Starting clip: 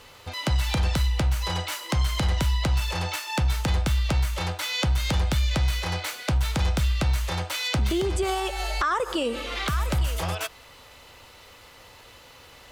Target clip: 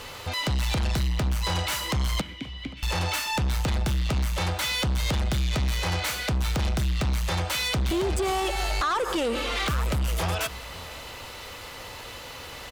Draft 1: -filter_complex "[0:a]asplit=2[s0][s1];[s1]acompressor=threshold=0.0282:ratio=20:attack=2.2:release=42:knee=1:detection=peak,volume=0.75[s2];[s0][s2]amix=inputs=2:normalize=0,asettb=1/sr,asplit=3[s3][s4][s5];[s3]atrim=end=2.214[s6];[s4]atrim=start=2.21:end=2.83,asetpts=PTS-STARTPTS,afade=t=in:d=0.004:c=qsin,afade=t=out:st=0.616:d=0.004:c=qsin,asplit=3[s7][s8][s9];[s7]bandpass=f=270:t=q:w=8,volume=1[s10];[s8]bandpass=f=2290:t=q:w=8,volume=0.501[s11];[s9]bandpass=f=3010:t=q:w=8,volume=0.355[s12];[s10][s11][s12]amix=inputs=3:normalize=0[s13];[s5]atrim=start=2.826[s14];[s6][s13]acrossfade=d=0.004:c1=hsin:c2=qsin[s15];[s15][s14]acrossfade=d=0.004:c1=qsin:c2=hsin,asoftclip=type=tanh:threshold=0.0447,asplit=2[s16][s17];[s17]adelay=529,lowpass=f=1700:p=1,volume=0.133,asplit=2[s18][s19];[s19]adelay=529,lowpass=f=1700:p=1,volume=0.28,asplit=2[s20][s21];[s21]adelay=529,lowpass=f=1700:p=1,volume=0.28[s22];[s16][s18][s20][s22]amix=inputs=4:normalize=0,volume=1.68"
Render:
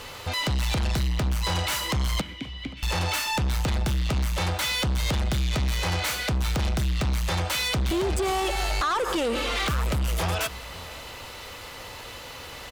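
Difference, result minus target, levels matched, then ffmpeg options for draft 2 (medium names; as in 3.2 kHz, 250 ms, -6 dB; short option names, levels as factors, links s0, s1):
compression: peak gain reduction -9 dB
-filter_complex "[0:a]asplit=2[s0][s1];[s1]acompressor=threshold=0.00944:ratio=20:attack=2.2:release=42:knee=1:detection=peak,volume=0.75[s2];[s0][s2]amix=inputs=2:normalize=0,asettb=1/sr,asplit=3[s3][s4][s5];[s3]atrim=end=2.214[s6];[s4]atrim=start=2.21:end=2.83,asetpts=PTS-STARTPTS,afade=t=in:d=0.004:c=qsin,afade=t=out:st=0.616:d=0.004:c=qsin,asplit=3[s7][s8][s9];[s7]bandpass=f=270:t=q:w=8,volume=1[s10];[s8]bandpass=f=2290:t=q:w=8,volume=0.501[s11];[s9]bandpass=f=3010:t=q:w=8,volume=0.355[s12];[s10][s11][s12]amix=inputs=3:normalize=0[s13];[s5]atrim=start=2.826[s14];[s6][s13]acrossfade=d=0.004:c1=hsin:c2=qsin[s15];[s15][s14]acrossfade=d=0.004:c1=qsin:c2=hsin,asoftclip=type=tanh:threshold=0.0447,asplit=2[s16][s17];[s17]adelay=529,lowpass=f=1700:p=1,volume=0.133,asplit=2[s18][s19];[s19]adelay=529,lowpass=f=1700:p=1,volume=0.28,asplit=2[s20][s21];[s21]adelay=529,lowpass=f=1700:p=1,volume=0.28[s22];[s16][s18][s20][s22]amix=inputs=4:normalize=0,volume=1.68"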